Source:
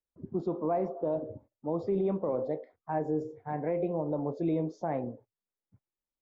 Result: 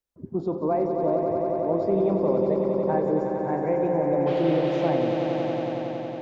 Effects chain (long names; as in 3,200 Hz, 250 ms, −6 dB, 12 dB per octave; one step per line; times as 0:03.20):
0:04.26–0:04.89: noise in a band 410–3,400 Hz −47 dBFS
echo that builds up and dies away 92 ms, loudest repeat 5, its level −8 dB
level +4.5 dB